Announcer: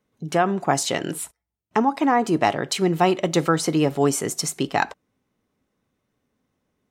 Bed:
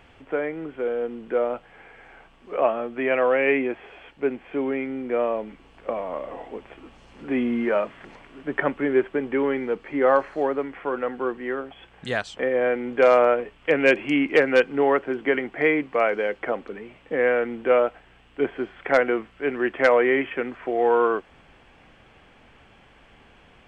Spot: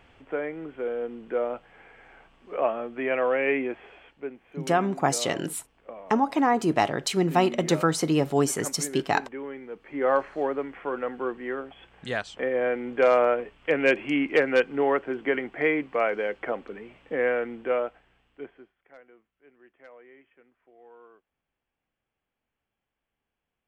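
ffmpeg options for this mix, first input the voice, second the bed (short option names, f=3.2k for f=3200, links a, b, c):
-filter_complex "[0:a]adelay=4350,volume=-3dB[a];[1:a]volume=6dB,afade=t=out:st=3.87:d=0.47:silence=0.334965,afade=t=in:st=9.71:d=0.46:silence=0.316228,afade=t=out:st=17.18:d=1.57:silence=0.0354813[b];[a][b]amix=inputs=2:normalize=0"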